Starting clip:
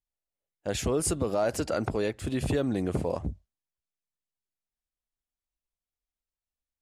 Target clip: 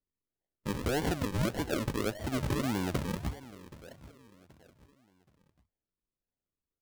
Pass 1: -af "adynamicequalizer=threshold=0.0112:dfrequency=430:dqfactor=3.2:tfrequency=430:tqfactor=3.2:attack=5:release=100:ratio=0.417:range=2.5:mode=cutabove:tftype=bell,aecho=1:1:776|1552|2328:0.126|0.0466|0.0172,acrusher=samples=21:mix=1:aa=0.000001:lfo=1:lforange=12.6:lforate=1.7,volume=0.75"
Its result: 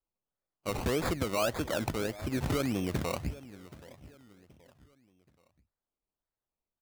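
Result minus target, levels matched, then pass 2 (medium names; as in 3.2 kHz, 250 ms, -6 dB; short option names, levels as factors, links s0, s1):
decimation with a swept rate: distortion -9 dB
-af "adynamicequalizer=threshold=0.0112:dfrequency=430:dqfactor=3.2:tfrequency=430:tqfactor=3.2:attack=5:release=100:ratio=0.417:range=2.5:mode=cutabove:tftype=bell,aecho=1:1:776|1552|2328:0.126|0.0466|0.0172,acrusher=samples=49:mix=1:aa=0.000001:lfo=1:lforange=29.4:lforate=1.7,volume=0.75"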